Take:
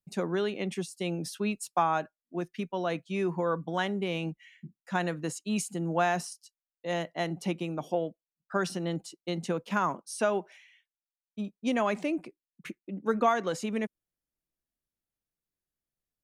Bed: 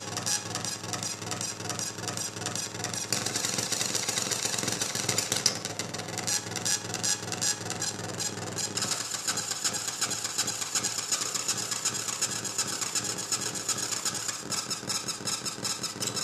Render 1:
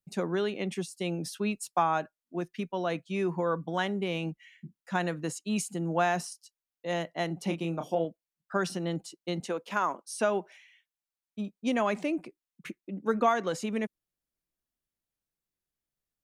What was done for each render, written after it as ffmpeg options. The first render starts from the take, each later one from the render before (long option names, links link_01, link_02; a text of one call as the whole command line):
ffmpeg -i in.wav -filter_complex "[0:a]asettb=1/sr,asplit=3[link_01][link_02][link_03];[link_01]atrim=end=7.444[link_04];[link_02]atrim=start=7.44:end=8.05,asetpts=PTS-STARTPTS,afade=type=in:duration=0.004:curve=qsin,afade=type=out:start_time=0.606:duration=0.004:curve=qsin,asplit=2[link_05][link_06];[link_06]adelay=30,volume=-6.5dB[link_07];[link_05][link_07]amix=inputs=2:normalize=0,atrim=end_sample=26901[link_08];[link_03]atrim=start=8.046[link_09];[link_04][link_08]acrossfade=duration=0.004:curve1=hsin:curve2=qsin[link_10];[link_10][link_09]acrossfade=duration=0.004:curve1=qsin:curve2=hsin,asettb=1/sr,asplit=3[link_11][link_12][link_13];[link_11]atrim=end=9.404[link_14];[link_12]atrim=start=9.4:end=10.19,asetpts=PTS-STARTPTS,afade=type=in:duration=0.004:curve=qsin,afade=type=out:start_time=0.786:duration=0.004:curve=qsin,highpass=320[link_15];[link_13]atrim=start=10.186[link_16];[link_14][link_15]acrossfade=duration=0.004:curve1=hsin:curve2=qsin[link_17];[link_17][link_16]acrossfade=duration=0.004:curve1=qsin:curve2=hsin" out.wav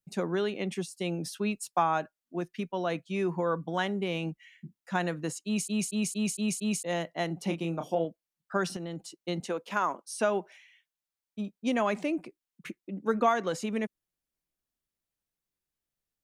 ffmpeg -i in.wav -filter_complex "[0:a]asettb=1/sr,asplit=3[link_01][link_02][link_03];[link_01]atrim=end=8.764[link_04];[link_02]atrim=start=8.76:end=9.18,asetpts=PTS-STARTPTS,afade=type=in:duration=0.004:curve=qsin,afade=type=out:start_time=0.416:duration=0.004:curve=qsin,acompressor=threshold=-34dB:ratio=5:attack=3.2:release=140:knee=1:detection=peak[link_05];[link_03]atrim=start=9.176[link_06];[link_04][link_05]acrossfade=duration=0.004:curve1=hsin:curve2=qsin[link_07];[link_07][link_06]acrossfade=duration=0.004:curve1=qsin:curve2=hsin,asplit=7[link_08][link_09][link_10][link_11][link_12][link_13][link_14];[link_08]atrim=end=5.682[link_15];[link_09]atrim=start=5.448:end=5.682[link_16];[link_10]atrim=start=5.448:end=5.682[link_17];[link_11]atrim=start=5.448:end=5.682[link_18];[link_12]atrim=start=5.448:end=5.682[link_19];[link_13]atrim=start=5.448:end=5.682[link_20];[link_14]atrim=start=6.828[link_21];[link_15][link_16]acrossfade=duration=0.004:curve1=hsin:curve2=hsin[link_22];[link_22][link_17]acrossfade=duration=0.004:curve1=hsin:curve2=hsin[link_23];[link_23][link_18]acrossfade=duration=0.004:curve1=hsin:curve2=hsin[link_24];[link_24][link_19]acrossfade=duration=0.004:curve1=hsin:curve2=hsin[link_25];[link_25][link_20]acrossfade=duration=0.004:curve1=hsin:curve2=hsin[link_26];[link_26][link_21]acrossfade=duration=0.004:curve1=hsin:curve2=hsin" out.wav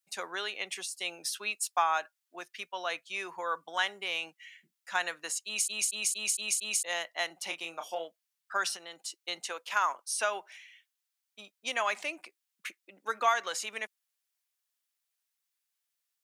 ffmpeg -i in.wav -af "highpass=690,tiltshelf=frequency=890:gain=-6.5" out.wav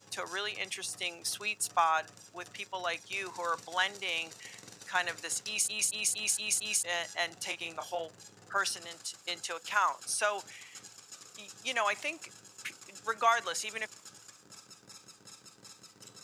ffmpeg -i in.wav -i bed.wav -filter_complex "[1:a]volume=-21dB[link_01];[0:a][link_01]amix=inputs=2:normalize=0" out.wav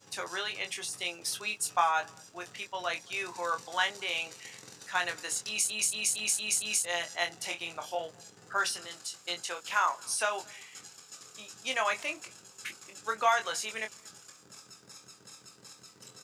ffmpeg -i in.wav -filter_complex "[0:a]asplit=2[link_01][link_02];[link_02]adelay=23,volume=-5.5dB[link_03];[link_01][link_03]amix=inputs=2:normalize=0,asplit=2[link_04][link_05];[link_05]adelay=221.6,volume=-28dB,highshelf=frequency=4000:gain=-4.99[link_06];[link_04][link_06]amix=inputs=2:normalize=0" out.wav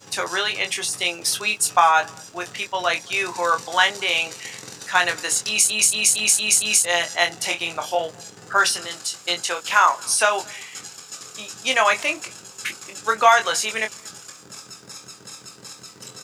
ffmpeg -i in.wav -af "volume=12dB,alimiter=limit=-3dB:level=0:latency=1" out.wav